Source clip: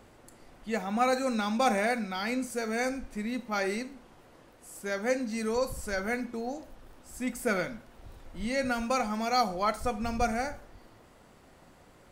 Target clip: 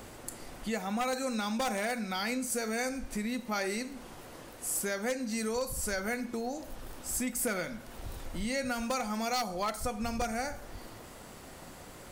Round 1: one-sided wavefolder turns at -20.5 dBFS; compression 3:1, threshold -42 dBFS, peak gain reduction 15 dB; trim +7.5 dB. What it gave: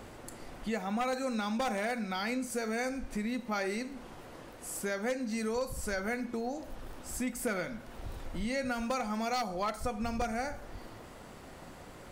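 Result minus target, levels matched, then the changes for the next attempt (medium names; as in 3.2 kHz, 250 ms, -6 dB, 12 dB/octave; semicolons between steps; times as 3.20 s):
8 kHz band -6.0 dB
add after compression: treble shelf 5 kHz +9.5 dB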